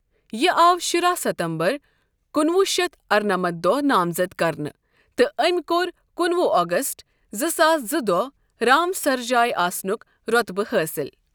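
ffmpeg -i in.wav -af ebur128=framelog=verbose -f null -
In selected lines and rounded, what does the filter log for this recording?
Integrated loudness:
  I:         -21.3 LUFS
  Threshold: -31.7 LUFS
Loudness range:
  LRA:         1.6 LU
  Threshold: -41.8 LUFS
  LRA low:   -22.6 LUFS
  LRA high:  -21.0 LUFS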